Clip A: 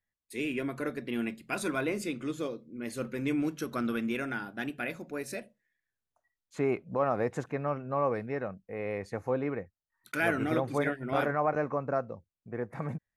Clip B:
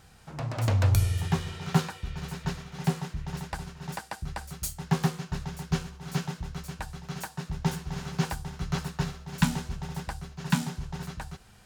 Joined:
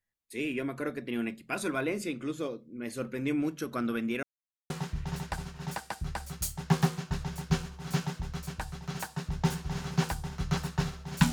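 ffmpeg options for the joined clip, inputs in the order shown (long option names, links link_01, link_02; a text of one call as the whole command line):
ffmpeg -i cue0.wav -i cue1.wav -filter_complex "[0:a]apad=whole_dur=11.32,atrim=end=11.32,asplit=2[link_01][link_02];[link_01]atrim=end=4.23,asetpts=PTS-STARTPTS,afade=type=out:start_time=4.226:duration=0.004:curve=hsin[link_03];[link_02]atrim=start=4.23:end=4.7,asetpts=PTS-STARTPTS,volume=0[link_04];[1:a]atrim=start=2.91:end=9.53,asetpts=PTS-STARTPTS,afade=type=in:duration=0.004:curve=hsin[link_05];[link_03][link_04][link_05]concat=n=3:v=0:a=1" out.wav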